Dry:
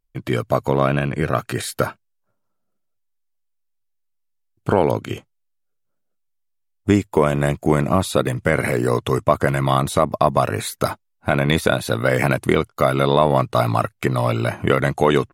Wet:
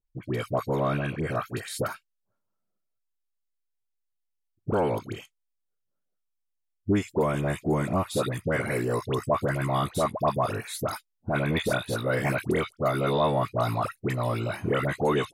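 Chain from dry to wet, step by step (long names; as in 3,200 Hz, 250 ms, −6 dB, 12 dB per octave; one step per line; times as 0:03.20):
all-pass dispersion highs, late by 77 ms, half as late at 1,200 Hz
level −8 dB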